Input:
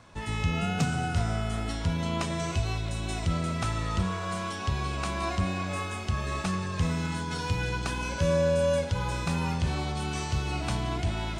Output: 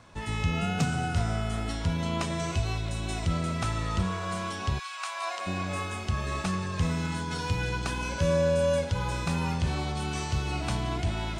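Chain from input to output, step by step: 4.78–5.46 s: high-pass 1.3 kHz -> 480 Hz 24 dB/octave

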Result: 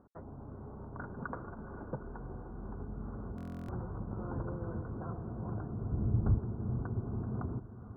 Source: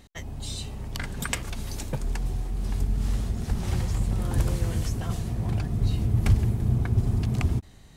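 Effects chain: rippled Chebyshev low-pass 1.5 kHz, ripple 3 dB; 5.92–6.38 s: tilt EQ -2.5 dB/octave; in parallel at -2 dB: compression, threshold -32 dBFS, peak gain reduction 22.5 dB; on the sum: high-pass 190 Hz 6 dB/octave; on a send: echo that smears into a reverb 464 ms, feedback 54%, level -13 dB; on the sum: buffer glitch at 3.36 s, samples 1024, times 13; trim -7 dB

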